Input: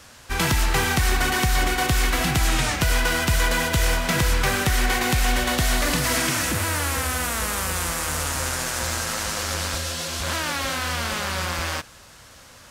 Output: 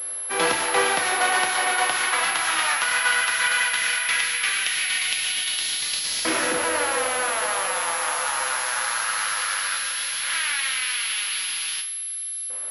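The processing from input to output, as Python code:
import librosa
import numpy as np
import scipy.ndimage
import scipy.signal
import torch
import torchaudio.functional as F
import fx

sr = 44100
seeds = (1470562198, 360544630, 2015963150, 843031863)

y = fx.filter_lfo_highpass(x, sr, shape='saw_up', hz=0.16, low_hz=400.0, high_hz=4300.0, q=1.5)
y = fx.rev_double_slope(y, sr, seeds[0], early_s=0.56, late_s=4.4, knee_db=-22, drr_db=3.0)
y = fx.pwm(y, sr, carrier_hz=11000.0)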